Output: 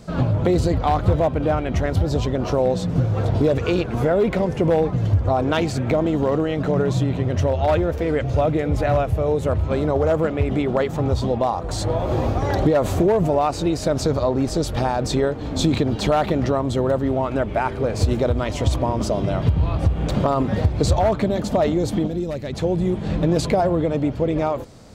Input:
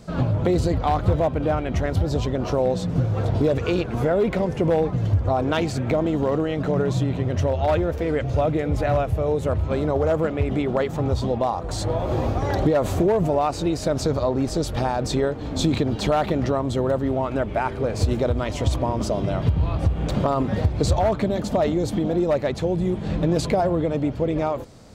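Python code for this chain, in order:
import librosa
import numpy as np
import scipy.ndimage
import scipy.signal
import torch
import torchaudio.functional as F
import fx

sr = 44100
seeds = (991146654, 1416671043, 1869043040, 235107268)

y = fx.peak_eq(x, sr, hz=900.0, db=-12.5, octaves=2.7, at=(22.06, 22.52), fade=0.02)
y = y * librosa.db_to_amplitude(2.0)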